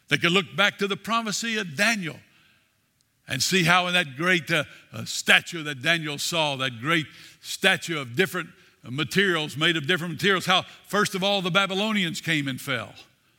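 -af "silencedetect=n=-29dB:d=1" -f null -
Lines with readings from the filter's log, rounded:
silence_start: 2.11
silence_end: 3.29 | silence_duration: 1.18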